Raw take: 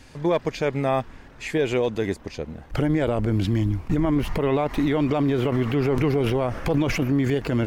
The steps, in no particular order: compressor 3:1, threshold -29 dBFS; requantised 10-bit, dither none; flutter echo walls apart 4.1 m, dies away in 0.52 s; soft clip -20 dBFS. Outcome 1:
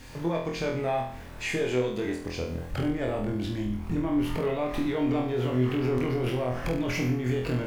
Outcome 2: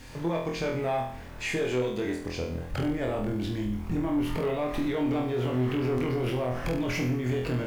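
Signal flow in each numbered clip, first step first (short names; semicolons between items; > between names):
requantised > compressor > soft clip > flutter echo; compressor > flutter echo > soft clip > requantised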